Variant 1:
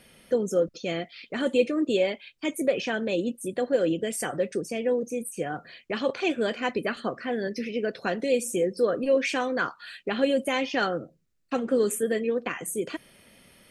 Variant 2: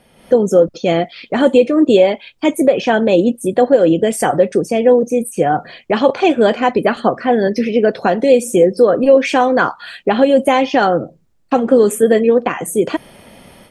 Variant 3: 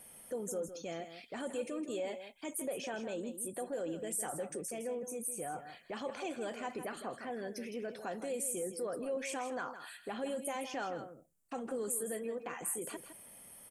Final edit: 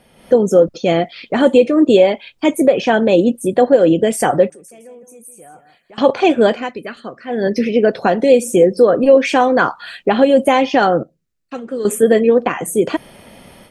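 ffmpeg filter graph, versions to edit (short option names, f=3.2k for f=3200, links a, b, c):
-filter_complex "[0:a]asplit=2[a][b];[1:a]asplit=4[c][d][e][f];[c]atrim=end=4.502[g];[2:a]atrim=start=4.498:end=5.982[h];[d]atrim=start=5.978:end=6.7[i];[a]atrim=start=6.46:end=7.5[j];[e]atrim=start=7.26:end=11.032[k];[b]atrim=start=11.028:end=11.852[l];[f]atrim=start=11.848[m];[g][h]acrossfade=d=0.004:c1=hsin:c2=hsin[n];[n][i]acrossfade=d=0.004:c1=hsin:c2=hsin[o];[o][j]acrossfade=d=0.24:c1=tri:c2=tri[p];[p][k]acrossfade=d=0.24:c1=tri:c2=tri[q];[q][l]acrossfade=d=0.004:c1=hsin:c2=hsin[r];[r][m]acrossfade=d=0.004:c1=hsin:c2=hsin"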